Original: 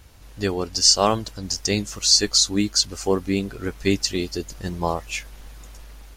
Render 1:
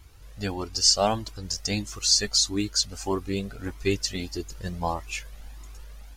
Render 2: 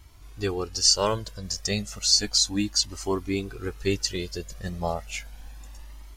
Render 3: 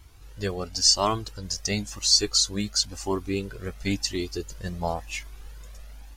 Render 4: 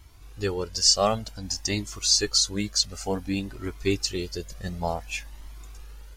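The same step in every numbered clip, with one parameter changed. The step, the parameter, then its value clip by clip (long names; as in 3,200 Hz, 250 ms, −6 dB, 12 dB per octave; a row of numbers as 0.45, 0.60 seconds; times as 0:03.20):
flanger whose copies keep moving one way, speed: 1.6, 0.33, 0.96, 0.55 Hertz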